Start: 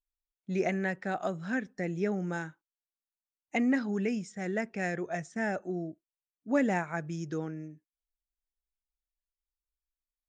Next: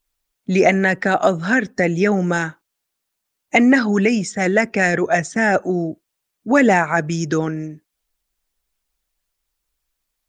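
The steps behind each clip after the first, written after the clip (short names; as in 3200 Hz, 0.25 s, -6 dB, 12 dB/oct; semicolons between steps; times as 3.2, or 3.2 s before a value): harmonic-percussive split percussive +7 dB; in parallel at +2 dB: limiter -21 dBFS, peak gain reduction 9 dB; on the sum: gain +7 dB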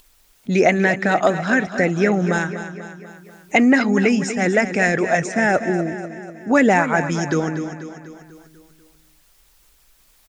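upward compressor, threshold -37 dBFS; feedback echo 0.245 s, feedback 55%, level -11 dB; gain -1 dB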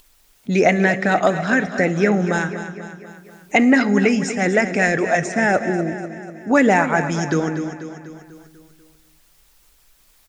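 reverb RT60 1.3 s, pre-delay 7 ms, DRR 14 dB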